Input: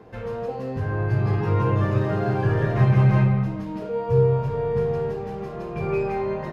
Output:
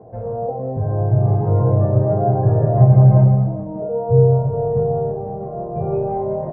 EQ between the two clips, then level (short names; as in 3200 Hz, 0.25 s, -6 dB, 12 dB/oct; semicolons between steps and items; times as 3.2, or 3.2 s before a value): synth low-pass 670 Hz, resonance Q 4.9; air absorption 140 m; bell 120 Hz +8.5 dB 0.91 oct; -1.0 dB